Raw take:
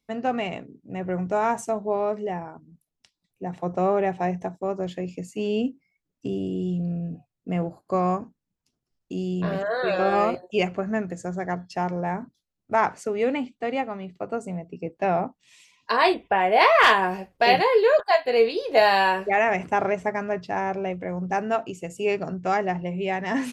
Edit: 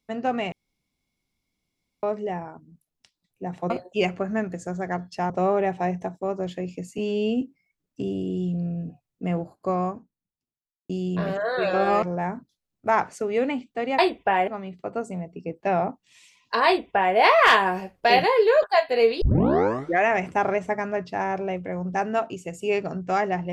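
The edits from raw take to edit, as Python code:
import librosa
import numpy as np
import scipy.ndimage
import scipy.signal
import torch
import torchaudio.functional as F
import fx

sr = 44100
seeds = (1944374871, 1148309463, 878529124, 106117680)

y = fx.studio_fade_out(x, sr, start_s=7.58, length_s=1.57)
y = fx.edit(y, sr, fx.room_tone_fill(start_s=0.52, length_s=1.51),
    fx.stretch_span(start_s=5.38, length_s=0.29, factor=1.5),
    fx.move(start_s=10.28, length_s=1.6, to_s=3.7),
    fx.duplicate(start_s=16.03, length_s=0.49, to_s=13.84),
    fx.tape_start(start_s=18.58, length_s=0.83), tone=tone)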